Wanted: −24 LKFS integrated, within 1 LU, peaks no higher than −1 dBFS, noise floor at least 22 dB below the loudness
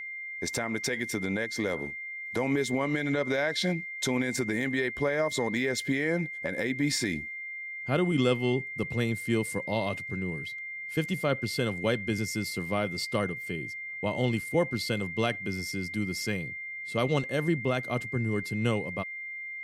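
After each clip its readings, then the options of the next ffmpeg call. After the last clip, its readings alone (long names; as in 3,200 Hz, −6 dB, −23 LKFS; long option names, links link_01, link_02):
interfering tone 2,100 Hz; level of the tone −36 dBFS; integrated loudness −30.0 LKFS; sample peak −12.5 dBFS; target loudness −24.0 LKFS
→ -af "bandreject=frequency=2100:width=30"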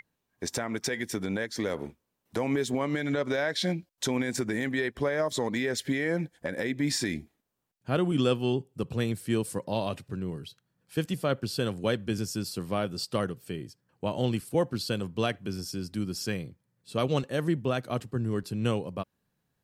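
interfering tone none found; integrated loudness −30.5 LKFS; sample peak −12.5 dBFS; target loudness −24.0 LKFS
→ -af "volume=6.5dB"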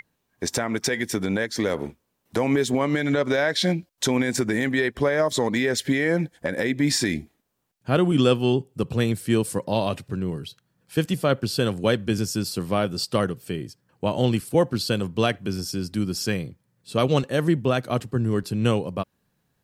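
integrated loudness −24.0 LKFS; sample peak −6.0 dBFS; background noise floor −73 dBFS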